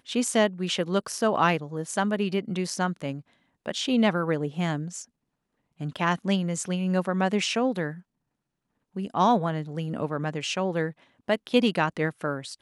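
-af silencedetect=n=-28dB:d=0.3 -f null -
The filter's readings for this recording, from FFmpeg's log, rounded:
silence_start: 3.14
silence_end: 3.66 | silence_duration: 0.52
silence_start: 5.00
silence_end: 5.81 | silence_duration: 0.81
silence_start: 7.91
silence_end: 8.97 | silence_duration: 1.06
silence_start: 10.90
silence_end: 11.29 | silence_duration: 0.39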